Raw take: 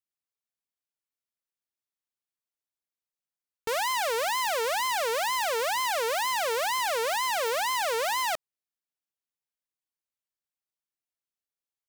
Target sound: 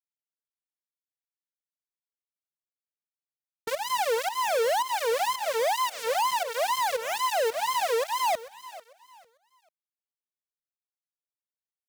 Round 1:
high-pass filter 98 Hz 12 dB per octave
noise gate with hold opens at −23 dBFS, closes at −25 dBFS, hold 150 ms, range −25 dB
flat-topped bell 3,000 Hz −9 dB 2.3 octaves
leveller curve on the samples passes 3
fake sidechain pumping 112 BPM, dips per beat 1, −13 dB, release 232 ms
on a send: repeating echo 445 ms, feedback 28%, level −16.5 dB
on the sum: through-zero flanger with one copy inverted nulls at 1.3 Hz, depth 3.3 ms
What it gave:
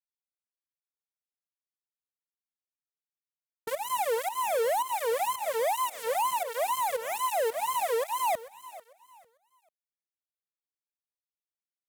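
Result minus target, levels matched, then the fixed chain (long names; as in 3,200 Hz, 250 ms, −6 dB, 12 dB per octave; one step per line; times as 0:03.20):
4,000 Hz band −5.0 dB
high-pass filter 98 Hz 12 dB per octave
noise gate with hold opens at −23 dBFS, closes at −25 dBFS, hold 150 ms, range −25 dB
leveller curve on the samples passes 3
fake sidechain pumping 112 BPM, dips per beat 1, −13 dB, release 232 ms
on a send: repeating echo 445 ms, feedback 28%, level −16.5 dB
on the sum: through-zero flanger with one copy inverted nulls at 1.3 Hz, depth 3.3 ms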